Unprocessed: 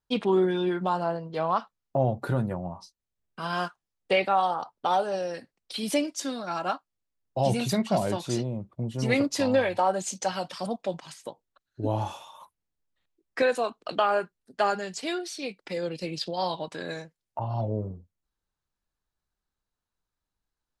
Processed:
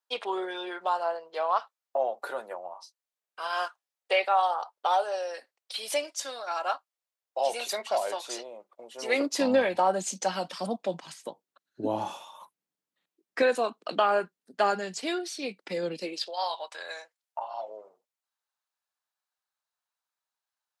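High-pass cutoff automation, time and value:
high-pass 24 dB/octave
8.95 s 510 Hz
9.53 s 170 Hz
15.91 s 170 Hz
16.36 s 640 Hz

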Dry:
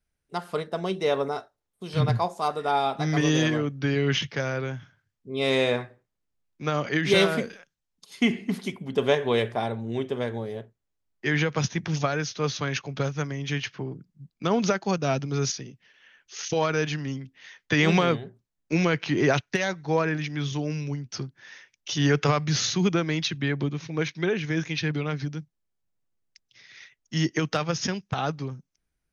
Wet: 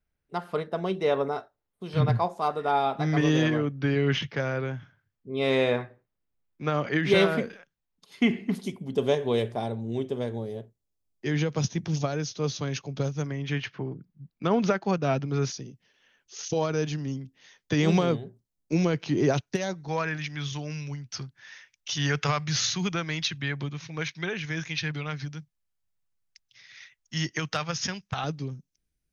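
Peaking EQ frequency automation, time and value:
peaking EQ -10 dB 1.9 oct
8.1 kHz
from 8.55 s 1.7 kHz
from 13.26 s 7.5 kHz
from 15.52 s 1.9 kHz
from 19.88 s 330 Hz
from 28.24 s 1.1 kHz

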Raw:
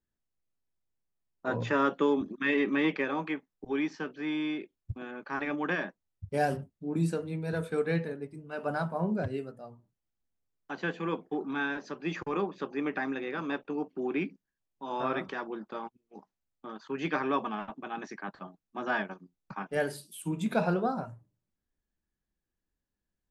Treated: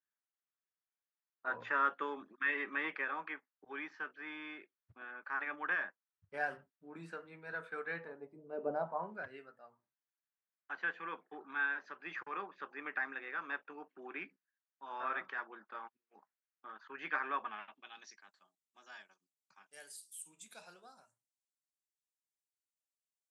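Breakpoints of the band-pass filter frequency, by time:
band-pass filter, Q 2
7.91 s 1.5 kHz
8.64 s 380 Hz
9.14 s 1.6 kHz
17.43 s 1.6 kHz
18.35 s 8 kHz

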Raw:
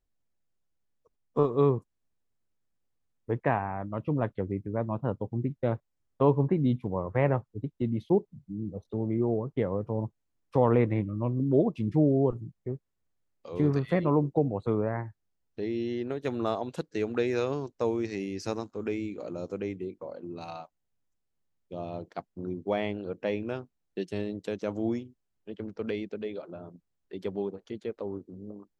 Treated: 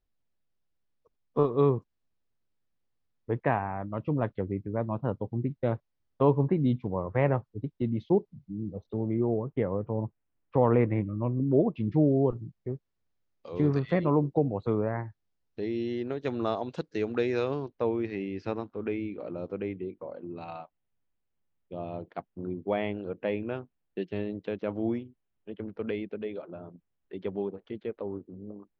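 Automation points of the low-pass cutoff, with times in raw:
low-pass 24 dB/octave
8.76 s 5.2 kHz
9.65 s 2.8 kHz
11.61 s 2.8 kHz
12.07 s 5.6 kHz
17.24 s 5.6 kHz
17.89 s 3.3 kHz

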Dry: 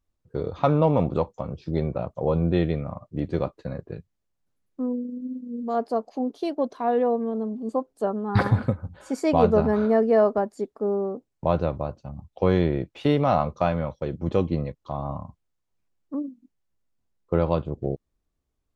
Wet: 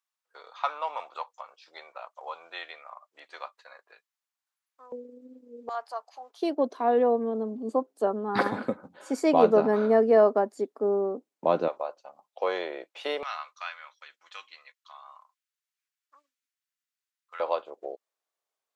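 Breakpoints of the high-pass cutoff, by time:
high-pass 24 dB/octave
930 Hz
from 4.92 s 420 Hz
from 5.69 s 880 Hz
from 6.42 s 240 Hz
from 11.68 s 540 Hz
from 13.23 s 1.4 kHz
from 17.40 s 550 Hz

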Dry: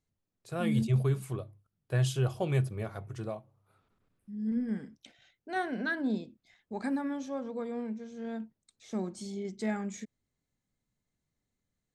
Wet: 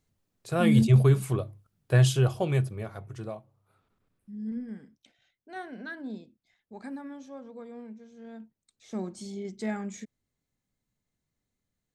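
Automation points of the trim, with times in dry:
1.97 s +8 dB
2.82 s 0 dB
4.35 s 0 dB
4.75 s -7 dB
8.32 s -7 dB
9.00 s +0.5 dB

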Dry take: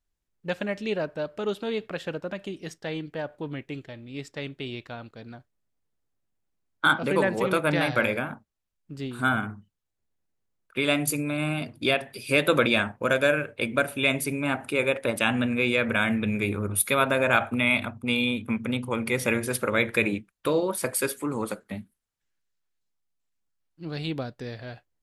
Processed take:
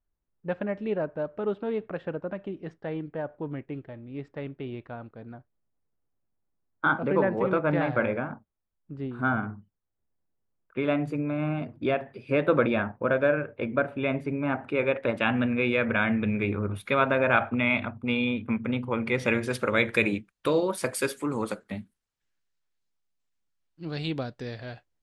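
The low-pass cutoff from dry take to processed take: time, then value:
14.36 s 1.4 kHz
15.04 s 2.4 kHz
18.99 s 2.4 kHz
19.27 s 4.4 kHz
19.96 s 7.7 kHz

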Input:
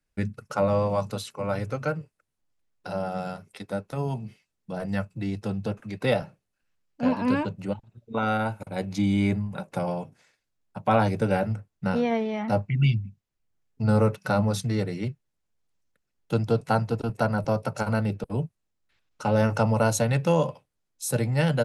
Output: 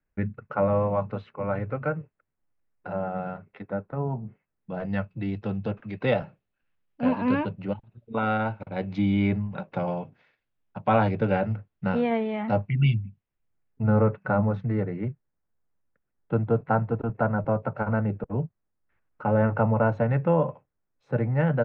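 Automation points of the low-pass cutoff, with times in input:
low-pass 24 dB/octave
3.61 s 2.2 kHz
4.25 s 1.3 kHz
4.85 s 3.3 kHz
13.03 s 3.3 kHz
14.11 s 1.9 kHz

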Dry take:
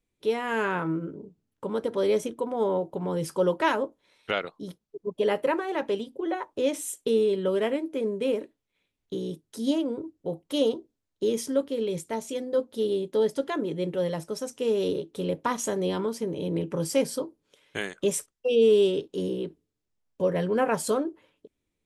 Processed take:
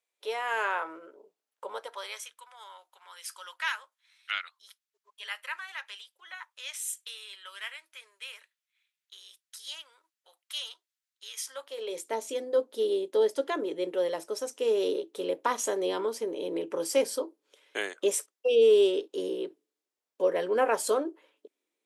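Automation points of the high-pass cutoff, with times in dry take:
high-pass 24 dB/octave
1.68 s 560 Hz
2.31 s 1.4 kHz
11.35 s 1.4 kHz
12.07 s 330 Hz

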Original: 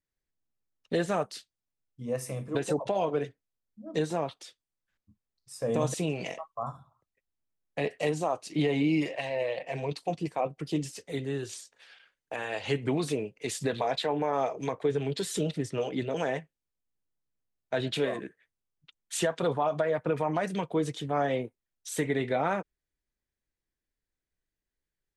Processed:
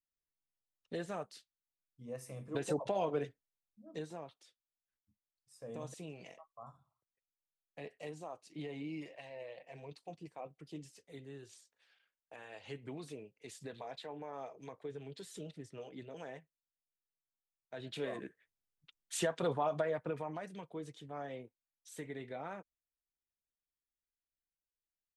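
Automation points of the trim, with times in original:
2.27 s -12.5 dB
2.68 s -6 dB
3.25 s -6 dB
4.27 s -17 dB
17.75 s -17 dB
18.24 s -6 dB
19.79 s -6 dB
20.52 s -16 dB

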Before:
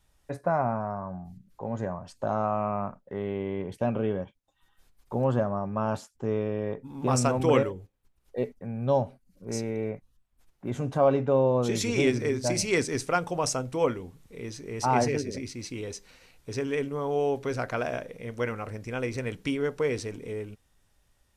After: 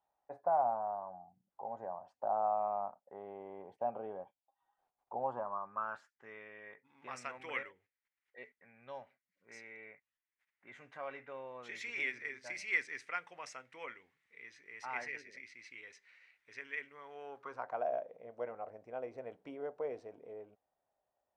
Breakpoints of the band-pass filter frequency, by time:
band-pass filter, Q 4.6
5.21 s 780 Hz
6.28 s 2 kHz
17.05 s 2 kHz
17.86 s 680 Hz

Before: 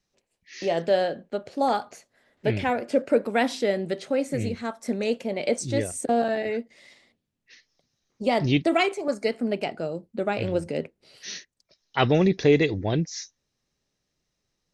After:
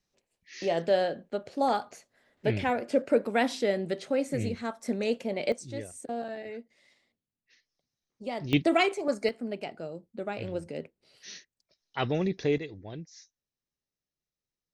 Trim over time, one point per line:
-3 dB
from 5.52 s -12 dB
from 8.53 s -2 dB
from 9.29 s -8.5 dB
from 12.58 s -16.5 dB

